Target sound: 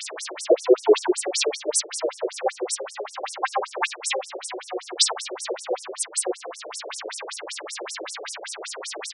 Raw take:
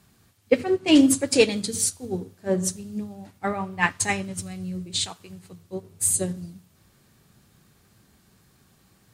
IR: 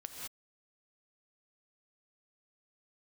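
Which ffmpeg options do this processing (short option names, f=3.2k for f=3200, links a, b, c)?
-filter_complex "[0:a]aeval=exprs='val(0)+0.5*0.0299*sgn(val(0))':c=same,equalizer=f=6.6k:w=3.6:g=-9.5,bandreject=f=60:t=h:w=6,bandreject=f=120:t=h:w=6,bandreject=f=180:t=h:w=6,bandreject=f=240:t=h:w=6,bandreject=f=300:t=h:w=6,bandreject=f=360:t=h:w=6,bandreject=f=420:t=h:w=6,asplit=2[a][b];[b]alimiter=limit=-15.5dB:level=0:latency=1:release=195,volume=0dB[c];[a][c]amix=inputs=2:normalize=0,acrossover=split=350|3000[d][e][f];[e]acompressor=threshold=-32dB:ratio=2[g];[d][g][f]amix=inputs=3:normalize=0,asplit=2[h][i];[i]asetrate=58866,aresample=44100,atempo=0.749154,volume=-1dB[j];[h][j]amix=inputs=2:normalize=0,asoftclip=type=hard:threshold=-12.5dB,aecho=1:1:19|60:0.422|0.282,afftfilt=real='re*between(b*sr/1024,430*pow(7700/430,0.5+0.5*sin(2*PI*5.2*pts/sr))/1.41,430*pow(7700/430,0.5+0.5*sin(2*PI*5.2*pts/sr))*1.41)':imag='im*between(b*sr/1024,430*pow(7700/430,0.5+0.5*sin(2*PI*5.2*pts/sr))/1.41,430*pow(7700/430,0.5+0.5*sin(2*PI*5.2*pts/sr))*1.41)':win_size=1024:overlap=0.75,volume=5.5dB"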